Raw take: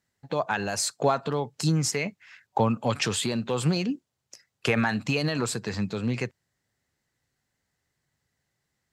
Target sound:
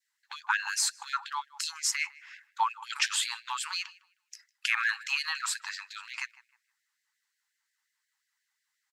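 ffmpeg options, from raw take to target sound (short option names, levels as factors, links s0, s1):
-filter_complex "[0:a]adynamicequalizer=threshold=0.0141:dfrequency=1100:dqfactor=1.1:tfrequency=1100:tqfactor=1.1:attack=5:release=100:ratio=0.375:range=2.5:mode=boostabove:tftype=bell,asplit=2[s0][s1];[s1]adelay=155,lowpass=f=2200:p=1,volume=0.112,asplit=2[s2][s3];[s3]adelay=155,lowpass=f=2200:p=1,volume=0.35,asplit=2[s4][s5];[s5]adelay=155,lowpass=f=2200:p=1,volume=0.35[s6];[s2][s4][s6]amix=inputs=3:normalize=0[s7];[s0][s7]amix=inputs=2:normalize=0,afftfilt=real='re*gte(b*sr/1024,770*pow(1600/770,0.5+0.5*sin(2*PI*5.6*pts/sr)))':imag='im*gte(b*sr/1024,770*pow(1600/770,0.5+0.5*sin(2*PI*5.6*pts/sr)))':win_size=1024:overlap=0.75"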